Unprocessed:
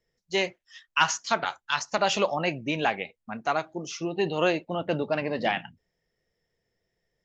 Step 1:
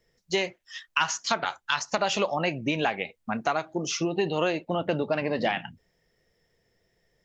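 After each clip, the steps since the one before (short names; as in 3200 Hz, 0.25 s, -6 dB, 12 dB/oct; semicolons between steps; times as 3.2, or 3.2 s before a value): compressor 3:1, threshold -33 dBFS, peak gain reduction 12.5 dB; gain +8 dB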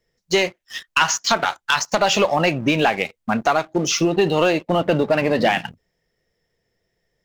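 sample leveller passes 2; gain +2 dB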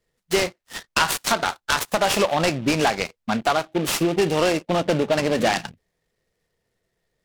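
noise-modulated delay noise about 2200 Hz, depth 0.053 ms; gain -2.5 dB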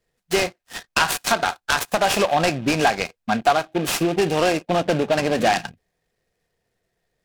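small resonant body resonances 730/1600/2500 Hz, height 7 dB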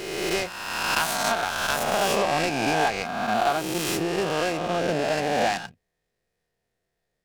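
spectral swells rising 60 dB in 1.72 s; gain -8.5 dB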